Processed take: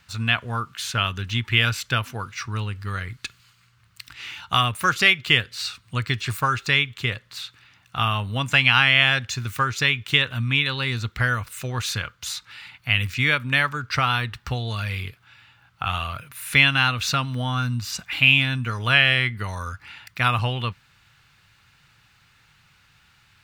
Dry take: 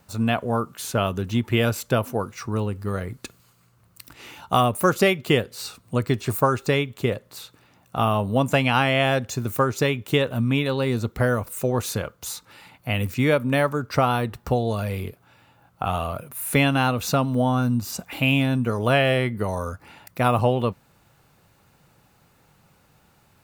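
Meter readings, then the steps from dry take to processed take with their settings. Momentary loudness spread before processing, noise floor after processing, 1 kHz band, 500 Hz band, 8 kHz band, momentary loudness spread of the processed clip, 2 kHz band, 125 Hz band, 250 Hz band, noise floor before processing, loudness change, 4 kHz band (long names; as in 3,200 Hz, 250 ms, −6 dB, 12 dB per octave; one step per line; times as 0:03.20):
13 LU, −59 dBFS, −1.5 dB, −12.0 dB, −0.5 dB, 16 LU, +7.5 dB, −1.0 dB, −8.5 dB, −60 dBFS, +1.5 dB, +8.5 dB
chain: drawn EQ curve 120 Hz 0 dB, 190 Hz −8 dB, 590 Hz −13 dB, 1,600 Hz +7 dB, 3,300 Hz +9 dB, 4,700 Hz +6 dB, 12,000 Hz −7 dB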